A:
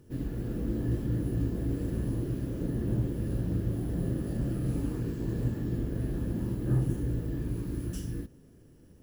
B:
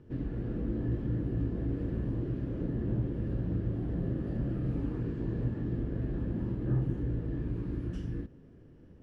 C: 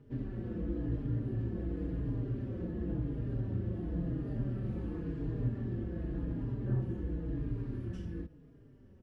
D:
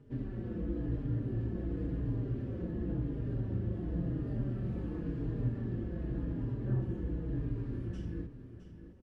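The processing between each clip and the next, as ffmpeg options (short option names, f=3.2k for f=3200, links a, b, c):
-filter_complex "[0:a]lowpass=2.6k,asplit=2[a][b];[b]acompressor=threshold=-36dB:ratio=6,volume=0dB[c];[a][c]amix=inputs=2:normalize=0,volume=-4.5dB"
-filter_complex "[0:a]asplit=2[a][b];[b]adelay=4.5,afreqshift=-0.93[c];[a][c]amix=inputs=2:normalize=1"
-af "aecho=1:1:663:0.266,aresample=22050,aresample=44100"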